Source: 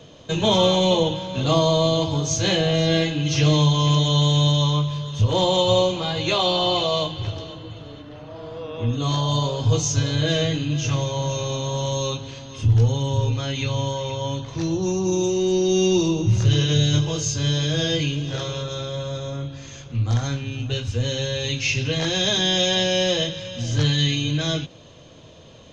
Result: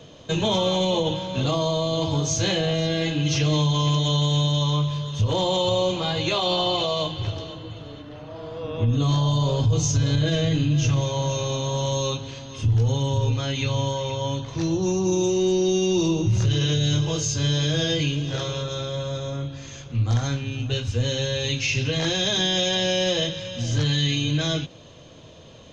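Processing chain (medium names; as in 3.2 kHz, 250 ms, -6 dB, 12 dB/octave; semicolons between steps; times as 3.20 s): 8.63–11.01 s: bass shelf 220 Hz +8.5 dB; peak limiter -13.5 dBFS, peak gain reduction 10 dB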